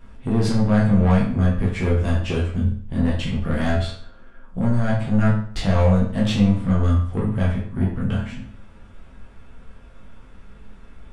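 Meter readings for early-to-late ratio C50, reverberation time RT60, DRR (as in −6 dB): 5.0 dB, 0.50 s, −5.5 dB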